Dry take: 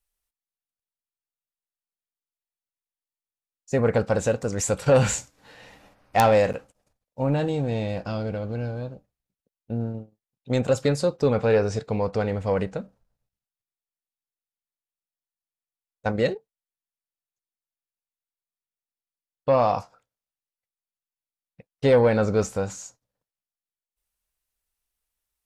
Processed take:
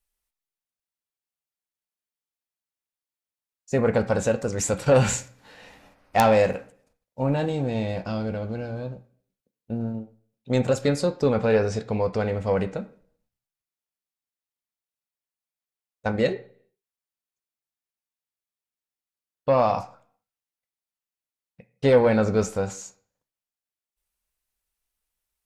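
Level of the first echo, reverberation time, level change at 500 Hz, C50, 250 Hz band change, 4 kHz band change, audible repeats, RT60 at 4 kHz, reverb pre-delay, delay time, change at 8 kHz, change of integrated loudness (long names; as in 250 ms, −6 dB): no echo audible, 0.55 s, 0.0 dB, 16.0 dB, +1.0 dB, 0.0 dB, no echo audible, 0.45 s, 3 ms, no echo audible, 0.0 dB, 0.0 dB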